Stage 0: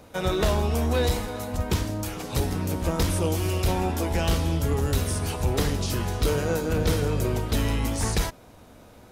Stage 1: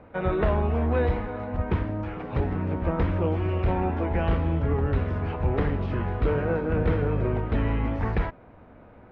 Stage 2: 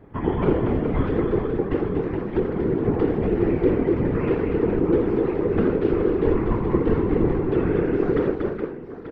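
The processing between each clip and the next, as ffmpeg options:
-af "lowpass=f=2200:w=0.5412,lowpass=f=2200:w=1.3066"
-af "aecho=1:1:83|238|421|887:0.316|0.531|0.422|0.251,afreqshift=-460,afftfilt=real='hypot(re,im)*cos(2*PI*random(0))':imag='hypot(re,im)*sin(2*PI*random(1))':win_size=512:overlap=0.75,volume=2.51"

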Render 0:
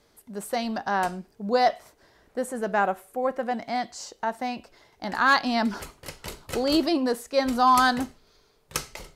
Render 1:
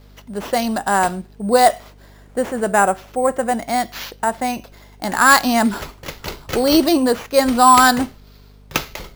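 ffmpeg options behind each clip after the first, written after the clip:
-af "aeval=exprs='val(0)+0.00224*(sin(2*PI*50*n/s)+sin(2*PI*2*50*n/s)/2+sin(2*PI*3*50*n/s)/3+sin(2*PI*4*50*n/s)/4+sin(2*PI*5*50*n/s)/5)':c=same,acrusher=samples=5:mix=1:aa=0.000001,volume=2.66"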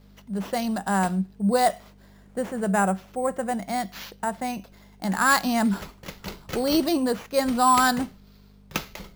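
-af "equalizer=f=190:t=o:w=0.25:g=14.5,volume=0.376"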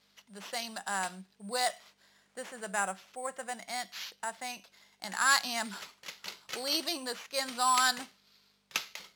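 -af "bandpass=f=4500:t=q:w=0.57:csg=0"

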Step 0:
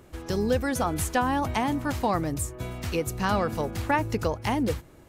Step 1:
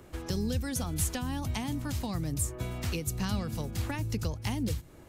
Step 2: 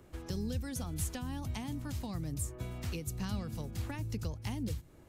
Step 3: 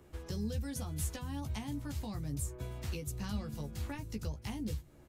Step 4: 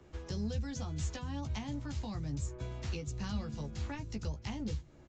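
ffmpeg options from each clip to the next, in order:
-filter_complex "[0:a]acrossover=split=220|3000[s0][s1][s2];[s1]acompressor=threshold=0.0112:ratio=10[s3];[s0][s3][s2]amix=inputs=3:normalize=0"
-af "lowshelf=f=360:g=3,volume=0.422"
-filter_complex "[0:a]asplit=2[s0][s1];[s1]adelay=14,volume=0.596[s2];[s0][s2]amix=inputs=2:normalize=0,volume=0.75"
-filter_complex "[0:a]acrossover=split=240|510|2500[s0][s1][s2][s3];[s1]aeval=exprs='clip(val(0),-1,0.00355)':c=same[s4];[s0][s4][s2][s3]amix=inputs=4:normalize=0,aresample=16000,aresample=44100,volume=1.12"

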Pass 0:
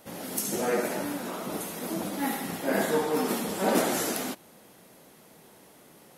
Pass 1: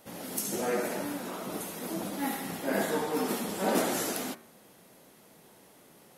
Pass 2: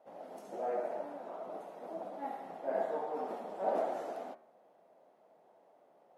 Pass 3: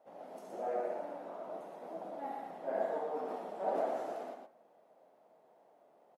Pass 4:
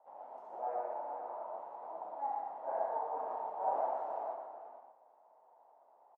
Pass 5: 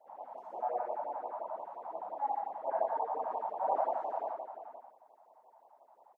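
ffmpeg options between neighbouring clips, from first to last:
-af "bandreject=f=77.73:t=h:w=4,bandreject=f=155.46:t=h:w=4,bandreject=f=233.19:t=h:w=4,bandreject=f=310.92:t=h:w=4,bandreject=f=388.65:t=h:w=4,bandreject=f=466.38:t=h:w=4,bandreject=f=544.11:t=h:w=4,bandreject=f=621.84:t=h:w=4,bandreject=f=699.57:t=h:w=4,bandreject=f=777.3:t=h:w=4,bandreject=f=855.03:t=h:w=4,bandreject=f=932.76:t=h:w=4,bandreject=f=1010.49:t=h:w=4,bandreject=f=1088.22:t=h:w=4,bandreject=f=1165.95:t=h:w=4,bandreject=f=1243.68:t=h:w=4,bandreject=f=1321.41:t=h:w=4,bandreject=f=1399.14:t=h:w=4,bandreject=f=1476.87:t=h:w=4,bandreject=f=1554.6:t=h:w=4,bandreject=f=1632.33:t=h:w=4,bandreject=f=1710.06:t=h:w=4,bandreject=f=1787.79:t=h:w=4,bandreject=f=1865.52:t=h:w=4,bandreject=f=1943.25:t=h:w=4,bandreject=f=2020.98:t=h:w=4,bandreject=f=2098.71:t=h:w=4,bandreject=f=2176.44:t=h:w=4,bandreject=f=2254.17:t=h:w=4,bandreject=f=2331.9:t=h:w=4,bandreject=f=2409.63:t=h:w=4,volume=0.75"
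-af "bandpass=f=670:t=q:w=3.2:csg=0,volume=1.12"
-af "aecho=1:1:43.73|119.5:0.282|0.562,volume=0.794"
-filter_complex "[0:a]bandpass=f=910:t=q:w=4.5:csg=0,asplit=2[s0][s1];[s1]adelay=454.8,volume=0.398,highshelf=f=4000:g=-10.2[s2];[s0][s2]amix=inputs=2:normalize=0,volume=2.51"
-af "afftfilt=real='re*(1-between(b*sr/1024,330*pow(1800/330,0.5+0.5*sin(2*PI*5.7*pts/sr))/1.41,330*pow(1800/330,0.5+0.5*sin(2*PI*5.7*pts/sr))*1.41))':imag='im*(1-between(b*sr/1024,330*pow(1800/330,0.5+0.5*sin(2*PI*5.7*pts/sr))/1.41,330*pow(1800/330,0.5+0.5*sin(2*PI*5.7*pts/sr))*1.41))':win_size=1024:overlap=0.75,volume=1.68"

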